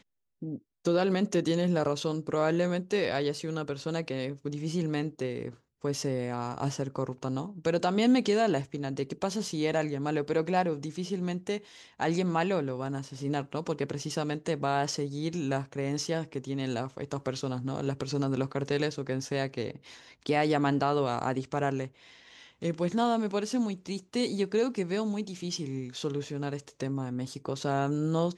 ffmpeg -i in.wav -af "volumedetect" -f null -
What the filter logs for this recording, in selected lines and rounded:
mean_volume: -30.5 dB
max_volume: -14.1 dB